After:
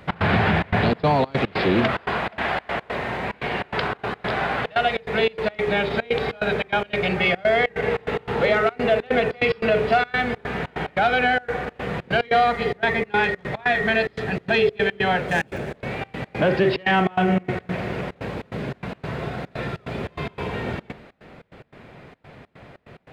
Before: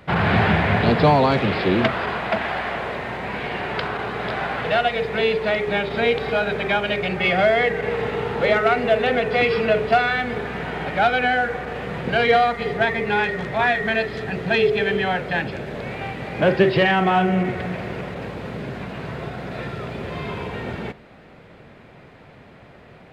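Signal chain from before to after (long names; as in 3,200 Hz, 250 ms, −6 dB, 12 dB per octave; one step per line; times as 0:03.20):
0:15.27–0:15.77: running median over 9 samples
brickwall limiter −12 dBFS, peak gain reduction 7 dB
gate pattern "x.xxxx.xx.xx." 145 BPM −24 dB
level +1.5 dB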